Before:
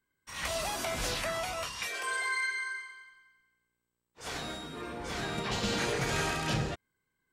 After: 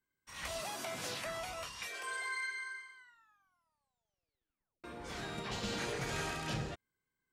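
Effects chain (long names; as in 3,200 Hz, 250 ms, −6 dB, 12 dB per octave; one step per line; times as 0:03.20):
0:00.60–0:01.27: high-pass filter 110 Hz 24 dB per octave
0:02.95: tape stop 1.89 s
level −7 dB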